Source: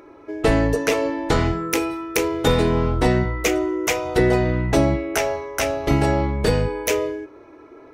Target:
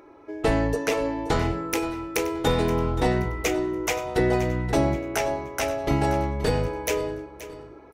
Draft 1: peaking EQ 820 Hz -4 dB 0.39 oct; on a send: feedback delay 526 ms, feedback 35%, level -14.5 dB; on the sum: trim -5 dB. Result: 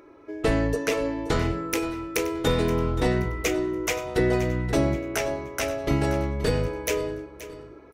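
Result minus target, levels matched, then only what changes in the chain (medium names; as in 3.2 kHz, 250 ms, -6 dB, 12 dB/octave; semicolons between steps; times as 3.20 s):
1 kHz band -4.0 dB
change: peaking EQ 820 Hz +4 dB 0.39 oct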